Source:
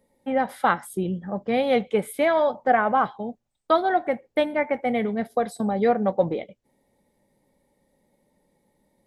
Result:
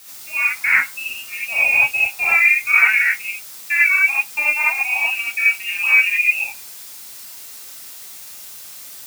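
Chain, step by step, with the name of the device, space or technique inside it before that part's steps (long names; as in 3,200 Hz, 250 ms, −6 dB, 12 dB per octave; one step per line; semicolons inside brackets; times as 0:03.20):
noise reduction from a noise print of the clip's start 8 dB
high-pass filter 240 Hz
scrambled radio voice (band-pass filter 340–2,900 Hz; voice inversion scrambler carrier 3,000 Hz; white noise bed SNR 22 dB)
high-shelf EQ 3,000 Hz +9.5 dB
reverb whose tail is shaped and stops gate 110 ms rising, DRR −7.5 dB
level −4 dB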